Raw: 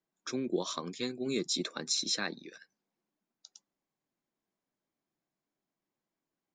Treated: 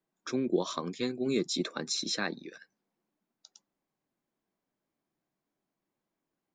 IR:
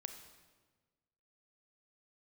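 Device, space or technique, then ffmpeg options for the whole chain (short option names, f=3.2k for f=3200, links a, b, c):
behind a face mask: -af "highshelf=f=2.9k:g=-7.5,volume=4dB"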